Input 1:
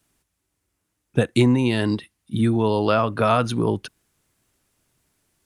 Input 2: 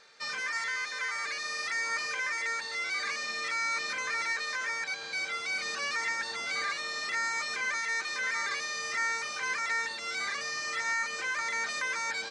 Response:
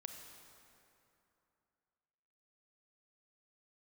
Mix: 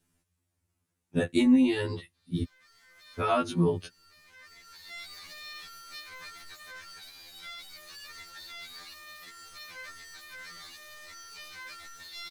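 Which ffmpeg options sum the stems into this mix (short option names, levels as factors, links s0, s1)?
-filter_complex "[0:a]volume=0.562,asplit=3[s0][s1][s2];[s0]atrim=end=2.43,asetpts=PTS-STARTPTS,afade=t=out:st=2.426:d=0.004:c=hsin[s3];[s1]atrim=start=2.43:end=3.2,asetpts=PTS-STARTPTS,volume=0[s4];[s2]atrim=start=3.2,asetpts=PTS-STARTPTS,afade=t=in:d=0.004:c=hsin[s5];[s3][s4][s5]concat=n=3:v=0:a=1,asplit=2[s6][s7];[1:a]equalizer=f=4000:t=o:w=0.95:g=14,alimiter=limit=0.0944:level=0:latency=1,asoftclip=type=tanh:threshold=0.0178,adelay=2150,volume=0.447[s8];[s7]apad=whole_len=637407[s9];[s8][s9]sidechaincompress=threshold=0.00708:ratio=6:attack=16:release=870[s10];[s6][s10]amix=inputs=2:normalize=0,lowshelf=f=210:g=8,afftfilt=real='re*2*eq(mod(b,4),0)':imag='im*2*eq(mod(b,4),0)':win_size=2048:overlap=0.75"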